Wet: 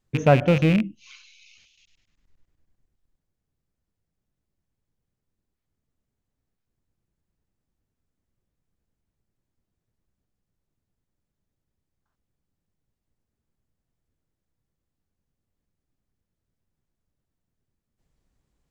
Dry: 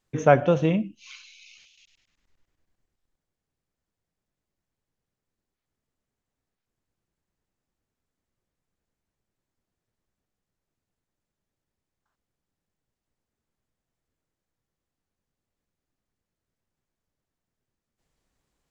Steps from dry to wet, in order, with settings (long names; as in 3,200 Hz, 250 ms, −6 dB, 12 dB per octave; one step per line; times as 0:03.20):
loose part that buzzes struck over −28 dBFS, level −15 dBFS
low-shelf EQ 290 Hz +10.5 dB
level −3 dB